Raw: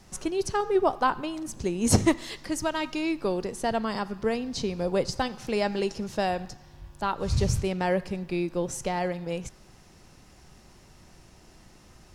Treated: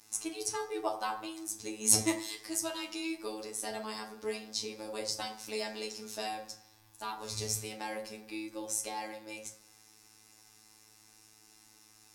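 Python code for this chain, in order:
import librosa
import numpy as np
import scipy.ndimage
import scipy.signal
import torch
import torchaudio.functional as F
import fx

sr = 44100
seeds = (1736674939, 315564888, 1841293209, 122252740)

y = fx.riaa(x, sr, side='recording')
y = fx.robotise(y, sr, hz=108.0)
y = fx.rev_fdn(y, sr, rt60_s=0.53, lf_ratio=1.0, hf_ratio=0.5, size_ms=20.0, drr_db=0.0)
y = fx.dynamic_eq(y, sr, hz=1500.0, q=2.9, threshold_db=-46.0, ratio=4.0, max_db=-4)
y = F.gain(torch.from_numpy(y), -8.5).numpy()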